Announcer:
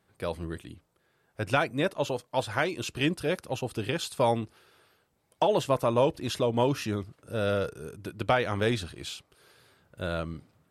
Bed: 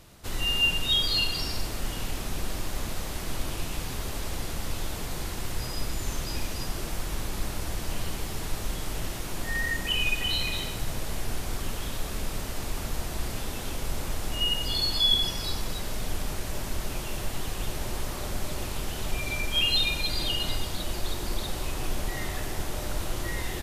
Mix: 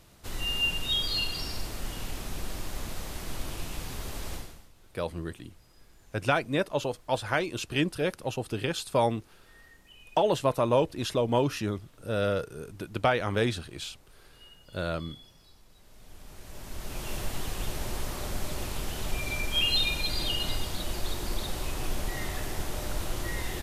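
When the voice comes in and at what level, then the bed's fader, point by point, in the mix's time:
4.75 s, 0.0 dB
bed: 0:04.35 −4 dB
0:04.72 −27 dB
0:15.69 −27 dB
0:17.10 −1.5 dB

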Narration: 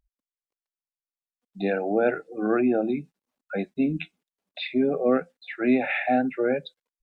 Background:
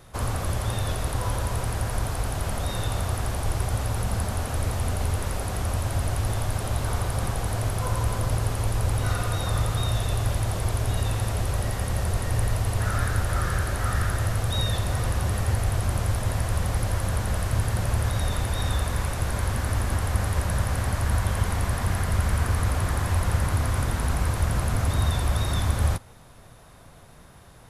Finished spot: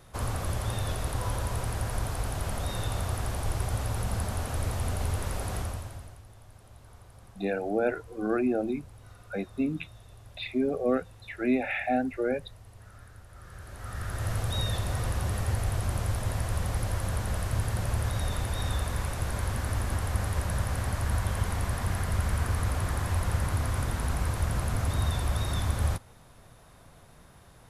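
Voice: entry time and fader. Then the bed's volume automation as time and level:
5.80 s, −4.5 dB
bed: 0:05.58 −4 dB
0:06.25 −25.5 dB
0:13.31 −25.5 dB
0:14.32 −4.5 dB

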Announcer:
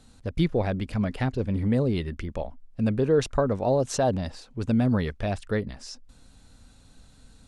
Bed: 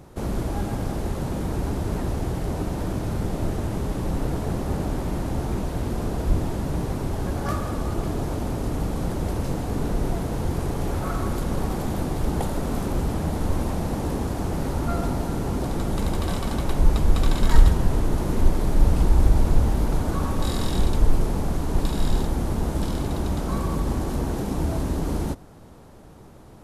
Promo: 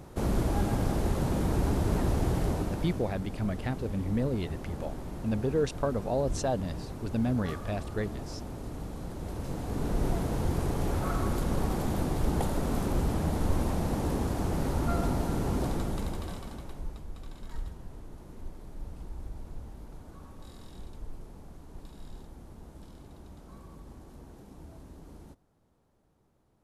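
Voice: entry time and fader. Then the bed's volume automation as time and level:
2.45 s, −6.0 dB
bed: 0:02.44 −1 dB
0:03.16 −12.5 dB
0:09.13 −12.5 dB
0:10.06 −3.5 dB
0:15.66 −3.5 dB
0:17.08 −23.5 dB

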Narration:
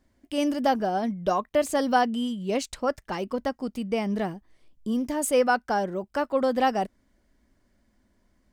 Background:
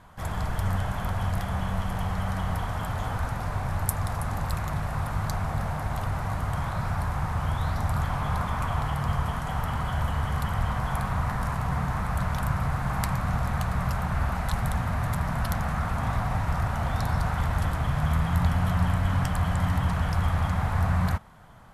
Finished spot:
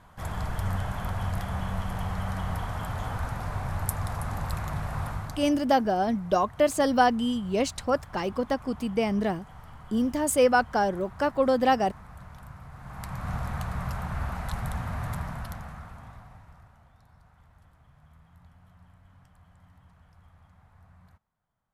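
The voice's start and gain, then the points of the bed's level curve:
5.05 s, +1.0 dB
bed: 0:05.08 −2.5 dB
0:05.65 −18.5 dB
0:12.70 −18.5 dB
0:13.30 −5 dB
0:15.16 −5 dB
0:16.96 −32 dB

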